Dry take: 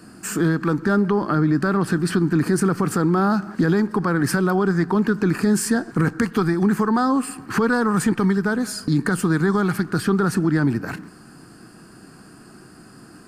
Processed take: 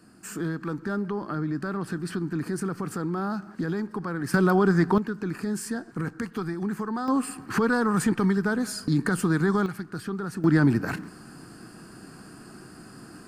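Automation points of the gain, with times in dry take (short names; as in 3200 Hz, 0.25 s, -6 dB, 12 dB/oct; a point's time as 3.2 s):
-10.5 dB
from 4.34 s -1 dB
from 4.98 s -11 dB
from 7.08 s -4 dB
from 9.66 s -12.5 dB
from 10.44 s -0.5 dB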